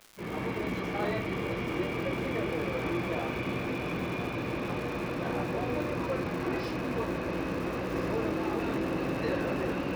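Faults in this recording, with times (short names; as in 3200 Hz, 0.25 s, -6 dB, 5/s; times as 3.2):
crackle 310/s -39 dBFS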